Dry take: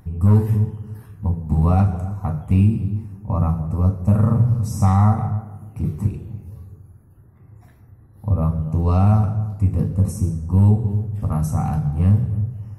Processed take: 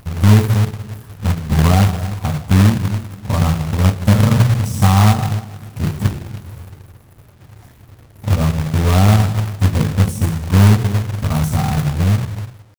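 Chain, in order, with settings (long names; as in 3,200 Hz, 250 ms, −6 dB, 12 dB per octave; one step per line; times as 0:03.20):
fade-out on the ending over 0.95 s
log-companded quantiser 4 bits
level +3.5 dB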